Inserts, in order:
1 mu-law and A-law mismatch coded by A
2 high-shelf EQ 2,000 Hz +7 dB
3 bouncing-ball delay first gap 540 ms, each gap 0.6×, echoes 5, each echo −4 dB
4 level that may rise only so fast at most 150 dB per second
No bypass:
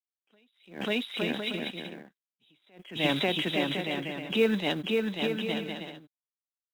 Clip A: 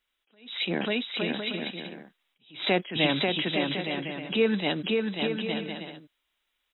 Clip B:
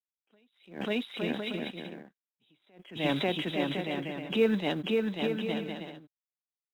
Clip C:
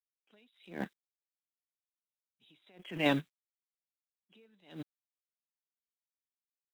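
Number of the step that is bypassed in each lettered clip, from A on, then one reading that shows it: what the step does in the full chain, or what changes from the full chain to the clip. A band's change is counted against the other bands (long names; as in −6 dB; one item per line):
1, distortion level −24 dB
2, 4 kHz band −4.5 dB
3, change in momentary loudness spread +7 LU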